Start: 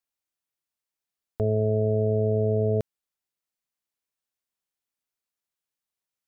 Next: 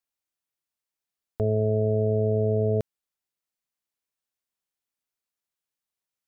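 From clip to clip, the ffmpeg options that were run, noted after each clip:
ffmpeg -i in.wav -af anull out.wav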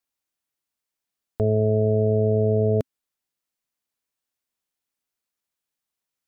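ffmpeg -i in.wav -af "equalizer=frequency=260:width_type=o:width=0.4:gain=3,volume=3dB" out.wav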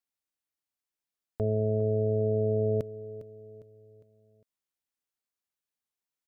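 ffmpeg -i in.wav -af "aecho=1:1:405|810|1215|1620:0.168|0.0755|0.034|0.0153,volume=-7dB" out.wav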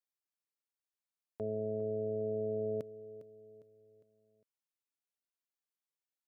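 ffmpeg -i in.wav -af "highpass=170,volume=-7.5dB" out.wav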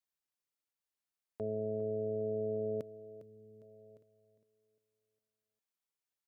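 ffmpeg -i in.wav -af "aecho=1:1:1161:0.0794" out.wav

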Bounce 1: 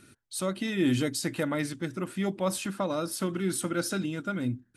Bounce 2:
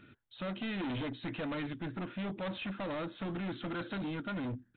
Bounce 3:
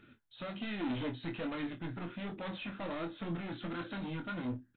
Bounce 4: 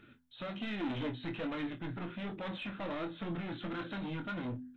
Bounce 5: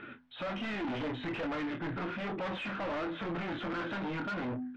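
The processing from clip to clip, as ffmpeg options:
ffmpeg -i in.wav -af "bandreject=frequency=380:width=12,aresample=8000,asoftclip=type=hard:threshold=-34dB,aresample=44100,volume=-1dB" out.wav
ffmpeg -i in.wav -filter_complex "[0:a]flanger=delay=2.2:depth=5.9:regen=59:speed=1.3:shape=triangular,asplit=2[link_01][link_02];[link_02]aecho=0:1:24|51:0.501|0.158[link_03];[link_01][link_03]amix=inputs=2:normalize=0,volume=1.5dB" out.wav
ffmpeg -i in.wav -filter_complex "[0:a]bandreject=frequency=83.77:width_type=h:width=4,bandreject=frequency=167.54:width_type=h:width=4,bandreject=frequency=251.31:width_type=h:width=4,asplit=2[link_01][link_02];[link_02]asoftclip=type=tanh:threshold=-37dB,volume=-6dB[link_03];[link_01][link_03]amix=inputs=2:normalize=0,volume=-2dB" out.wav
ffmpeg -i in.wav -filter_complex "[0:a]asplit=2[link_01][link_02];[link_02]highpass=frequency=720:poles=1,volume=21dB,asoftclip=type=tanh:threshold=-29dB[link_03];[link_01][link_03]amix=inputs=2:normalize=0,lowpass=frequency=1900:poles=1,volume=-6dB,lowpass=2800,asoftclip=type=tanh:threshold=-35.5dB,volume=4dB" out.wav

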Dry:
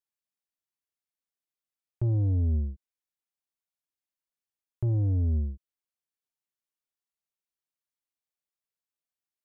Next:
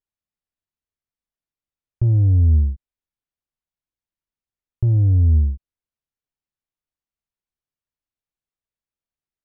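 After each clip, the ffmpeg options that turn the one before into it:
ffmpeg -i in.wav -af "aemphasis=mode=reproduction:type=bsi" out.wav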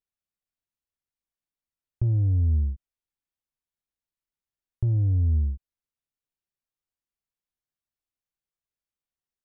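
ffmpeg -i in.wav -af "acompressor=threshold=-19dB:ratio=2,volume=-3.5dB" out.wav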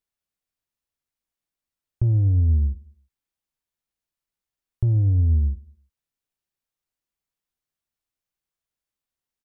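ffmpeg -i in.wav -af "aecho=1:1:108|216|324:0.0841|0.0345|0.0141,volume=3.5dB" out.wav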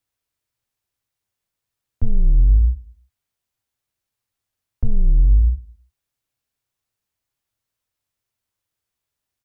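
ffmpeg -i in.wav -af "afreqshift=-130,volume=6dB" out.wav

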